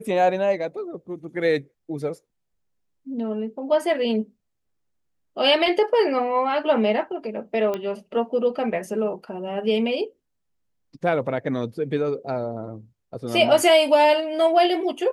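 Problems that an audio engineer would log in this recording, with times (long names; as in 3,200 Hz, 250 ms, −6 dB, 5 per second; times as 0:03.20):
0:07.74: click −15 dBFS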